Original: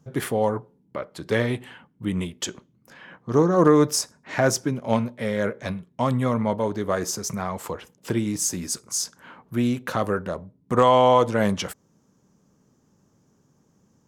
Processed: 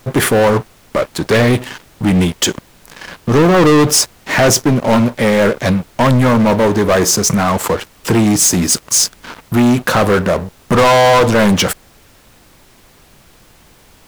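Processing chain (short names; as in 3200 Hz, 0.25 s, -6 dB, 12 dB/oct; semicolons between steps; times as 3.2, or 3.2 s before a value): sample leveller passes 5; added noise pink -46 dBFS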